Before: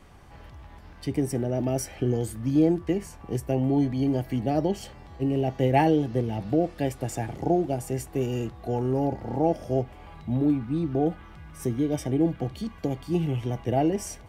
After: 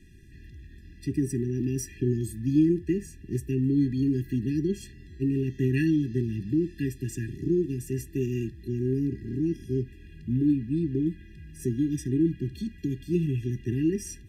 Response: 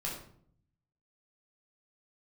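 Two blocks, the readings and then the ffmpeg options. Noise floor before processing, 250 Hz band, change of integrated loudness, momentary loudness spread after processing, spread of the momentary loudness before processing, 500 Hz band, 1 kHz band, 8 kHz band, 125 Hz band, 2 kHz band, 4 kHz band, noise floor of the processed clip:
-47 dBFS, 0.0 dB, -1.5 dB, 9 LU, 9 LU, -5.5 dB, under -40 dB, -2.0 dB, 0.0 dB, -2.5 dB, no reading, -48 dBFS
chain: -af "asuperstop=centerf=1000:order=12:qfactor=1,afftfilt=real='re*eq(mod(floor(b*sr/1024/400),2),0)':imag='im*eq(mod(floor(b*sr/1024/400),2),0)':win_size=1024:overlap=0.75"

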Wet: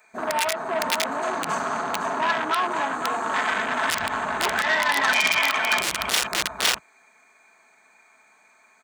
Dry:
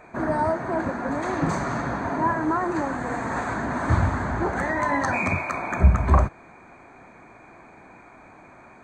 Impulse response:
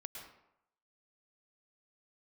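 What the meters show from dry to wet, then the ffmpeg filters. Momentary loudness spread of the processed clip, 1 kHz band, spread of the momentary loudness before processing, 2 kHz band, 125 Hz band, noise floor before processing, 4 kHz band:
7 LU, +1.5 dB, 7 LU, +6.5 dB, -21.5 dB, -49 dBFS, +22.5 dB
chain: -filter_complex "[0:a]aecho=1:1:4.6:0.52,afwtdn=0.0398,aeval=exprs='(mod(4.73*val(0)+1,2)-1)/4.73':c=same,acrossover=split=5000[s0][s1];[s1]acompressor=threshold=0.01:ratio=4:attack=1:release=60[s2];[s0][s2]amix=inputs=2:normalize=0,aecho=1:1:511:0.422,asoftclip=type=tanh:threshold=0.119,aderivative,alimiter=level_in=22.4:limit=0.891:release=50:level=0:latency=1,volume=0.501"

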